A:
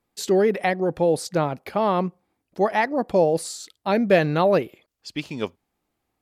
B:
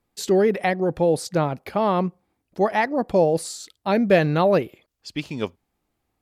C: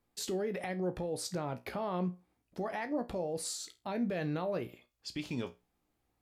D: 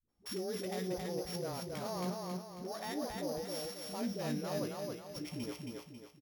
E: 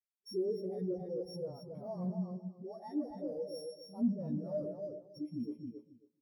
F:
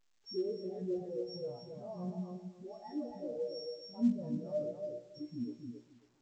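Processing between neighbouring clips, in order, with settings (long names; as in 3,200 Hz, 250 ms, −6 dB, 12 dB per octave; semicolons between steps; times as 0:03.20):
low-shelf EQ 120 Hz +6.5 dB
downward compressor, threshold −21 dBFS, peak gain reduction 9.5 dB; brickwall limiter −23.5 dBFS, peak gain reduction 10.5 dB; tuned comb filter 60 Hz, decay 0.24 s, harmonics all, mix 70%
samples sorted by size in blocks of 8 samples; all-pass dispersion highs, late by 89 ms, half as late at 330 Hz; on a send: repeating echo 272 ms, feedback 42%, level −3 dB; on the sum: level −4.5 dB
convolution reverb RT60 1.0 s, pre-delay 89 ms, DRR 7 dB; in parallel at −8 dB: sine wavefolder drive 10 dB, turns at −24 dBFS; on the sum: every bin expanded away from the loudest bin 2.5 to 1; level +2.5 dB
tuned comb filter 120 Hz, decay 0.37 s, harmonics all, mix 70%; level +5.5 dB; A-law companding 128 kbit/s 16,000 Hz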